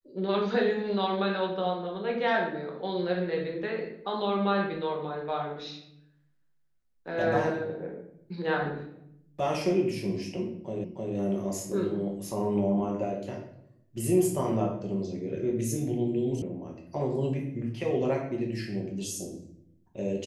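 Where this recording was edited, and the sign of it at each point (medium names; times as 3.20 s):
10.84 s: repeat of the last 0.31 s
16.42 s: sound stops dead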